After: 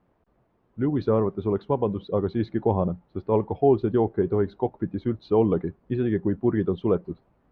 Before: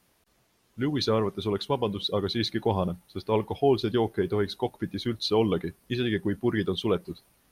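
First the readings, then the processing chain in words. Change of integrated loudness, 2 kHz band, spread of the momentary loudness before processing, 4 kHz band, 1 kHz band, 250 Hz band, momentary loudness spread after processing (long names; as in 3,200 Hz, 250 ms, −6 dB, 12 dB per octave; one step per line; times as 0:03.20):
+2.5 dB, −7.0 dB, 7 LU, below −15 dB, +1.5 dB, +3.5 dB, 7 LU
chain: low-pass filter 1,000 Hz 12 dB per octave
level +3.5 dB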